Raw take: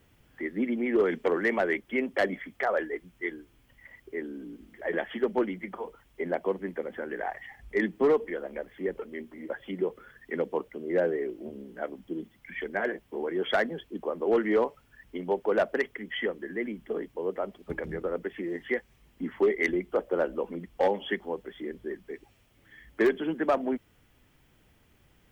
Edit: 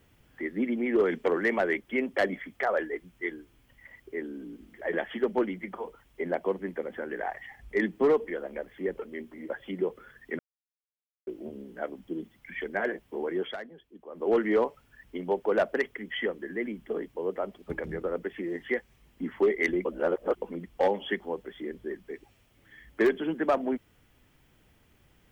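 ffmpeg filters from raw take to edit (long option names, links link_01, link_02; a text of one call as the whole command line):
ffmpeg -i in.wav -filter_complex "[0:a]asplit=7[link_01][link_02][link_03][link_04][link_05][link_06][link_07];[link_01]atrim=end=10.39,asetpts=PTS-STARTPTS,afade=type=out:start_time=10.386:duration=0.004:curve=hsin[link_08];[link_02]atrim=start=10.39:end=11.27,asetpts=PTS-STARTPTS,volume=0[link_09];[link_03]atrim=start=11.27:end=13.56,asetpts=PTS-STARTPTS,afade=type=in:duration=0.004:curve=hsin,afade=type=out:start_time=2.1:duration=0.19:silence=0.199526[link_10];[link_04]atrim=start=13.56:end=14.09,asetpts=PTS-STARTPTS,volume=-14dB[link_11];[link_05]atrim=start=14.09:end=19.852,asetpts=PTS-STARTPTS,afade=type=in:duration=0.19:silence=0.199526[link_12];[link_06]atrim=start=19.848:end=20.422,asetpts=PTS-STARTPTS,areverse[link_13];[link_07]atrim=start=20.418[link_14];[link_08][link_09][link_10][link_11][link_12]concat=n=5:v=0:a=1[link_15];[link_15][link_13]acrossfade=duration=0.004:curve1=hsin:curve2=hsin[link_16];[link_16][link_14]acrossfade=duration=0.004:curve1=hsin:curve2=hsin" out.wav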